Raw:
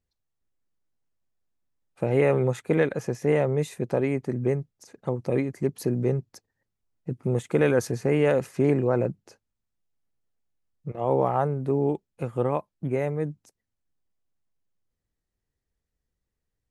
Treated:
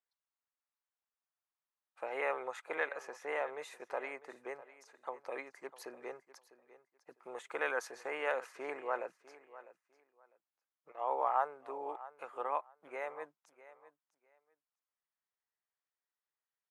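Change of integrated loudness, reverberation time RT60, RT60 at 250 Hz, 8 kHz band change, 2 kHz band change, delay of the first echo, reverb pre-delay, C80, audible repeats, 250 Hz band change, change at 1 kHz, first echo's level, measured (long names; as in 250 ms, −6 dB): −14.0 dB, no reverb audible, no reverb audible, −13.0 dB, −4.5 dB, 651 ms, no reverb audible, no reverb audible, 2, −28.0 dB, −4.5 dB, −17.0 dB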